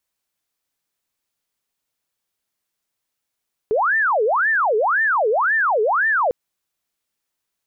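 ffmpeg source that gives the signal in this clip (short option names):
-f lavfi -i "aevalsrc='0.178*sin(2*PI*(1109.5*t-690.5/(2*PI*1.9)*sin(2*PI*1.9*t)))':d=2.6:s=44100"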